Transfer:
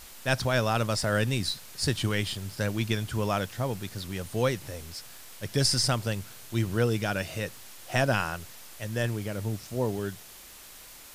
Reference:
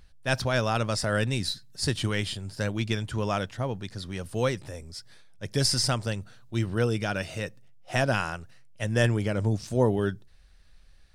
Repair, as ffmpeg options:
ffmpeg -i in.wav -af "adeclick=threshold=4,afwtdn=0.0045,asetnsamples=nb_out_samples=441:pad=0,asendcmd='8.8 volume volume 6dB',volume=0dB" out.wav

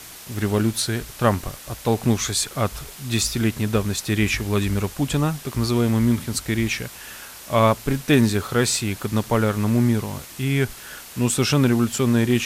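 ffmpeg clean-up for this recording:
ffmpeg -i in.wav -af "afwtdn=0.011" out.wav

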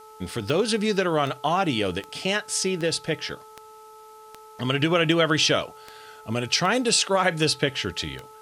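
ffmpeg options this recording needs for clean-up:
ffmpeg -i in.wav -af "adeclick=threshold=4,bandreject=frequency=434.5:width_type=h:width=4,bandreject=frequency=869:width_type=h:width=4,bandreject=frequency=1303.5:width_type=h:width=4,agate=range=-21dB:threshold=-39dB" out.wav

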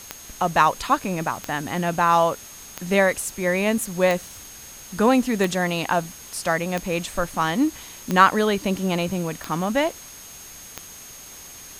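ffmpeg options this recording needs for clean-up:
ffmpeg -i in.wav -af "adeclick=threshold=4,bandreject=frequency=6500:width=30,afwtdn=0.0079" out.wav

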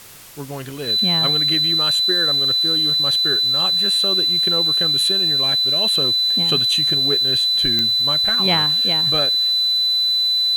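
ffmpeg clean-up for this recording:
ffmpeg -i in.wav -af "adeclick=threshold=4,bandreject=frequency=4000:width=30,afwtdn=0.0089" out.wav

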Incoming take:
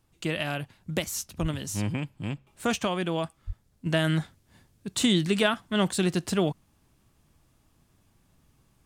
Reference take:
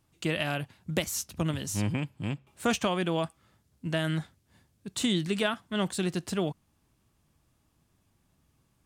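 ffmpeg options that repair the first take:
ffmpeg -i in.wav -filter_complex "[0:a]asplit=3[link_01][link_02][link_03];[link_01]afade=type=out:start_time=1.41:duration=0.02[link_04];[link_02]highpass=frequency=140:width=0.5412,highpass=frequency=140:width=1.3066,afade=type=in:start_time=1.41:duration=0.02,afade=type=out:start_time=1.53:duration=0.02[link_05];[link_03]afade=type=in:start_time=1.53:duration=0.02[link_06];[link_04][link_05][link_06]amix=inputs=3:normalize=0,asplit=3[link_07][link_08][link_09];[link_07]afade=type=out:start_time=3.46:duration=0.02[link_10];[link_08]highpass=frequency=140:width=0.5412,highpass=frequency=140:width=1.3066,afade=type=in:start_time=3.46:duration=0.02,afade=type=out:start_time=3.58:duration=0.02[link_11];[link_09]afade=type=in:start_time=3.58:duration=0.02[link_12];[link_10][link_11][link_12]amix=inputs=3:normalize=0,agate=range=-21dB:threshold=-58dB,asetnsamples=nb_out_samples=441:pad=0,asendcmd='3.86 volume volume -4.5dB',volume=0dB" out.wav

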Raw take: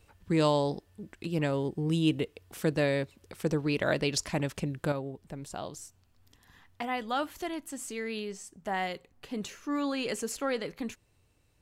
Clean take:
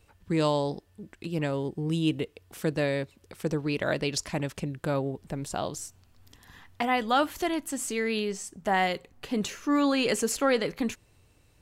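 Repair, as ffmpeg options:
ffmpeg -i in.wav -af "asetnsamples=nb_out_samples=441:pad=0,asendcmd='4.92 volume volume 7dB',volume=0dB" out.wav

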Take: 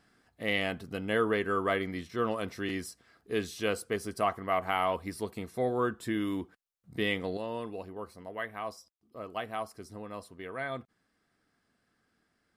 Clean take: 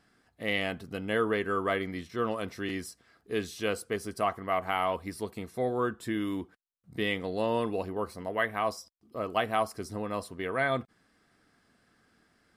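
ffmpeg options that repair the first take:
ffmpeg -i in.wav -af "asetnsamples=nb_out_samples=441:pad=0,asendcmd='7.37 volume volume 8dB',volume=0dB" out.wav

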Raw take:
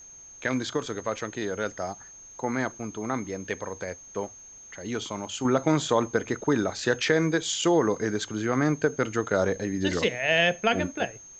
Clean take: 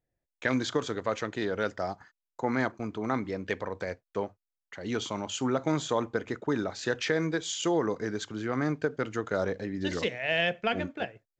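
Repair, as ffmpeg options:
ffmpeg -i in.wav -af "adeclick=threshold=4,bandreject=frequency=6400:width=30,agate=range=-21dB:threshold=-40dB,asetnsamples=nb_out_samples=441:pad=0,asendcmd='5.45 volume volume -5dB',volume=0dB" out.wav

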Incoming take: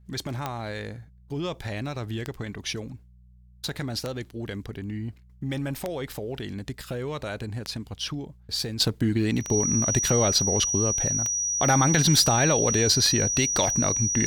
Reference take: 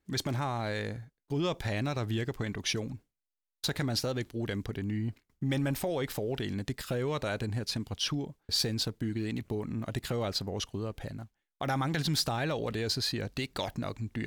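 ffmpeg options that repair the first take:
ffmpeg -i in.wav -af "adeclick=threshold=4,bandreject=frequency=60.8:width_type=h:width=4,bandreject=frequency=121.6:width_type=h:width=4,bandreject=frequency=182.4:width_type=h:width=4,bandreject=frequency=5800:width=30,asetnsamples=nb_out_samples=441:pad=0,asendcmd='8.8 volume volume -9.5dB',volume=0dB" out.wav

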